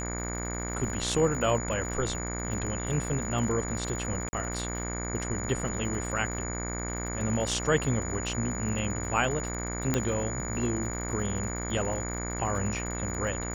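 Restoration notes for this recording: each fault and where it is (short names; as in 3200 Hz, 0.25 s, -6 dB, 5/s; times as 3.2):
buzz 60 Hz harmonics 39 -35 dBFS
crackle 80/s -37 dBFS
tone 6900 Hz -37 dBFS
4.29–4.33 gap 40 ms
9.94 pop -11 dBFS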